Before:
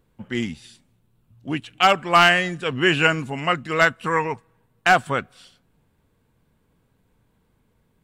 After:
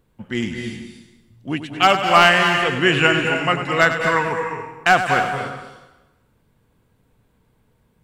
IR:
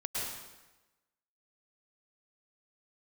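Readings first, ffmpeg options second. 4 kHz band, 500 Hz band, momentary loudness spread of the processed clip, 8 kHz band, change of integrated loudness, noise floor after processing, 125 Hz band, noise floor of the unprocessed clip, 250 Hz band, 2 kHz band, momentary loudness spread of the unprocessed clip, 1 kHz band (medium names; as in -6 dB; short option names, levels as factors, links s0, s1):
+3.0 dB, +3.5 dB, 16 LU, +3.0 dB, +2.5 dB, -63 dBFS, +3.0 dB, -66 dBFS, +3.0 dB, +3.0 dB, 15 LU, +3.0 dB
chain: -filter_complex "[0:a]asplit=2[s0][s1];[1:a]atrim=start_sample=2205,adelay=97[s2];[s1][s2]afir=irnorm=-1:irlink=0,volume=0.422[s3];[s0][s3]amix=inputs=2:normalize=0,volume=1.19"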